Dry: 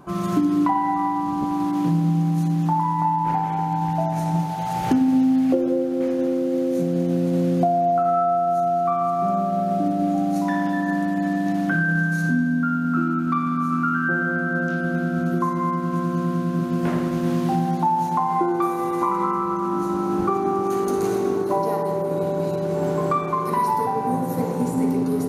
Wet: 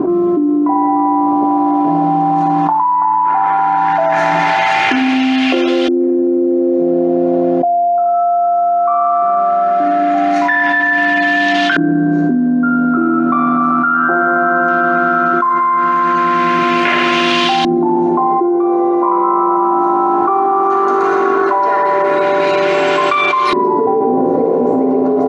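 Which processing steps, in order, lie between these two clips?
weighting filter ITU-R 468; LFO low-pass saw up 0.17 Hz 330–3300 Hz; comb 2.9 ms, depth 54%; fast leveller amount 100%; gain -2.5 dB

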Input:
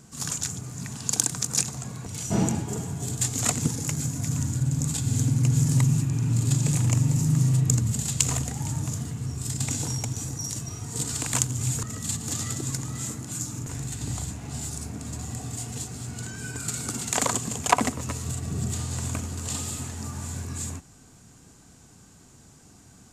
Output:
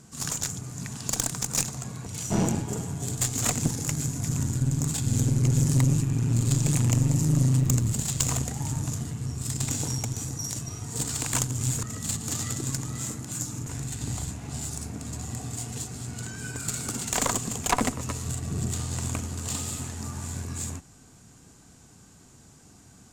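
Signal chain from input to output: tube stage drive 17 dB, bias 0.75; 7.56–8.33 requantised 10-bit, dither none; in parallel at -5 dB: overloaded stage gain 20 dB

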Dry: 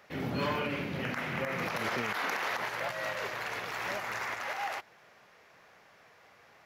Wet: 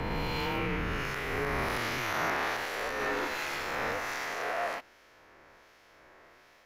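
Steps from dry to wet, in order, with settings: spectral swells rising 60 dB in 2.66 s; harmonic tremolo 1.3 Hz, depth 50%, crossover 2300 Hz; frequency shift -110 Hz; 2.98–3.63 doubler 14 ms -4 dB

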